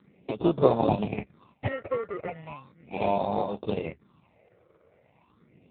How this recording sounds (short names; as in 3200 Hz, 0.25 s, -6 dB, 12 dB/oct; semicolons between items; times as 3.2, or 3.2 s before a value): aliases and images of a low sample rate 1600 Hz, jitter 0%; phasing stages 6, 0.37 Hz, lowest notch 220–2300 Hz; AMR-NB